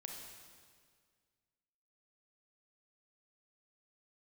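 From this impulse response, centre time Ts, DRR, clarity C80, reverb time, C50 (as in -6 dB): 72 ms, 0.5 dB, 4.0 dB, 1.9 s, 2.0 dB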